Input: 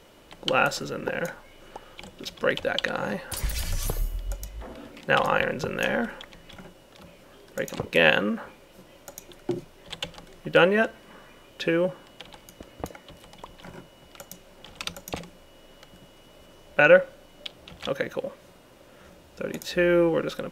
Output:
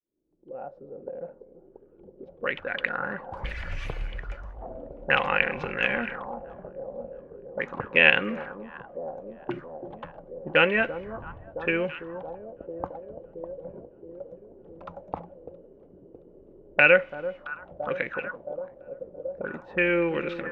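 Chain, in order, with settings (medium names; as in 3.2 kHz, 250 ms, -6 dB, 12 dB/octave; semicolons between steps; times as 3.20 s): fade-in on the opening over 3.92 s; 10.74–11.81 s: wind noise 110 Hz -39 dBFS; on a send: echo whose repeats swap between lows and highs 336 ms, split 1.1 kHz, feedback 79%, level -12 dB; on the sum: touch-sensitive low-pass 340–2400 Hz up, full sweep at -24.5 dBFS; trim -4.5 dB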